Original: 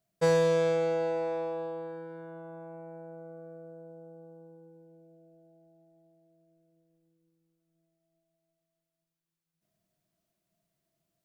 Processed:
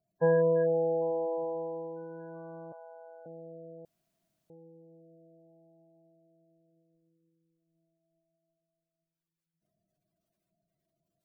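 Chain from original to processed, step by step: 2.72–3.26 HPF 570 Hz 24 dB/oct; spectral gate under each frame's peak -20 dB strong; 3.85–4.5 room tone

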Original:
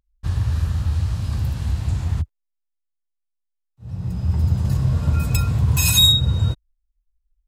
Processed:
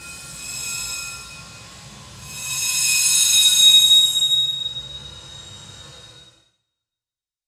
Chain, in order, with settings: weighting filter ITU-R 468; Paulstretch 4.5×, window 0.25 s, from 5.19; two-slope reverb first 0.39 s, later 1.6 s, from -26 dB, DRR -4.5 dB; gain -12.5 dB

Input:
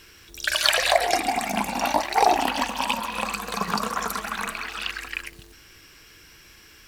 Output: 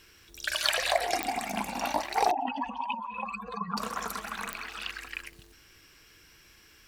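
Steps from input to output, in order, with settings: 2.31–3.77 spectral contrast raised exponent 2.6; pops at 1.23/4.53, -5 dBFS; gain -7 dB

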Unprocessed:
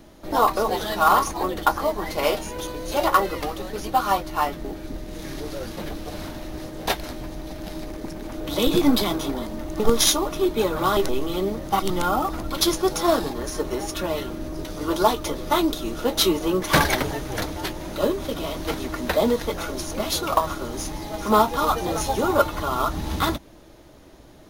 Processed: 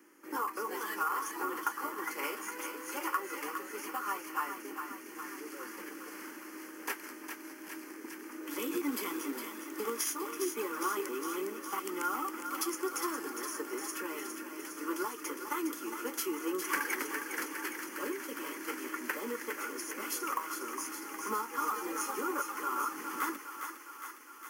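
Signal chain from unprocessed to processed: octaver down 2 oct, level -4 dB; steep high-pass 290 Hz 36 dB/oct; bell 560 Hz -2.5 dB 2.4 oct; compressor 8:1, threshold -22 dBFS, peak gain reduction 9 dB; fixed phaser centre 1600 Hz, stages 4; 8.43–10.96 companded quantiser 6-bit; thinning echo 0.409 s, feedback 72%, high-pass 650 Hz, level -6.5 dB; gain -4 dB

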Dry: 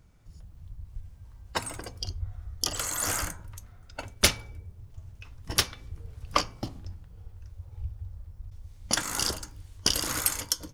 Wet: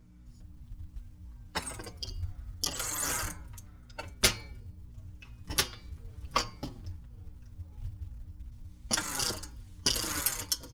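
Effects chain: notch 700 Hz, Q 12; de-hum 358.3 Hz, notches 14; short-mantissa float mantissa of 4-bit; hum 60 Hz, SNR 18 dB; endless flanger 5.9 ms -2.8 Hz

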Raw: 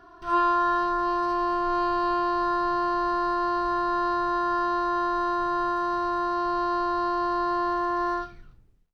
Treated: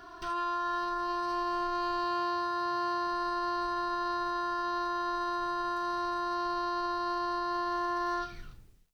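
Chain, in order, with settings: AGC gain up to 3 dB; 2.04–3.07 HPF 53 Hz; compressor 3:1, threshold -34 dBFS, peak gain reduction 12 dB; limiter -28 dBFS, peak gain reduction 5 dB; high shelf 2200 Hz +11.5 dB

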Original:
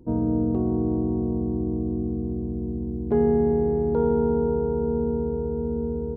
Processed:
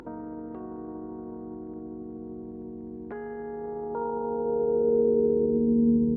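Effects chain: dynamic EQ 260 Hz, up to +4 dB, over -33 dBFS, Q 0.97; limiter -20 dBFS, peak gain reduction 11 dB; band-pass sweep 1600 Hz -> 220 Hz, 3.38–6.03; upward compressor, threshold -42 dBFS; hum 50 Hz, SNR 31 dB; gain +9 dB

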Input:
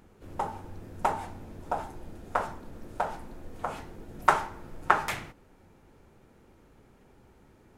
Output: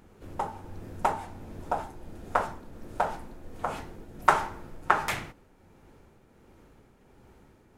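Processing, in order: tremolo triangle 1.4 Hz, depth 45%; gain +3 dB

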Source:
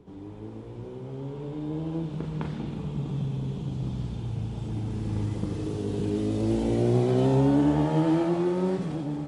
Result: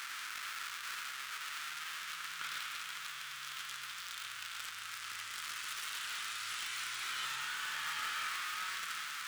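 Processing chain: zero-crossing step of -31 dBFS; elliptic high-pass 1300 Hz, stop band 50 dB; sample leveller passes 2; reverb, pre-delay 46 ms, DRR 10 dB; gain -3 dB

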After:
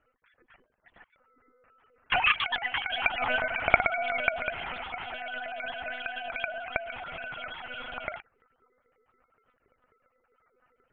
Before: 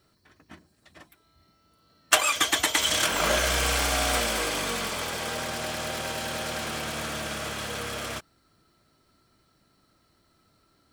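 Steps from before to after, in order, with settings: sine-wave speech; low shelf 210 Hz +10.5 dB; monotone LPC vocoder at 8 kHz 250 Hz; gain -5.5 dB

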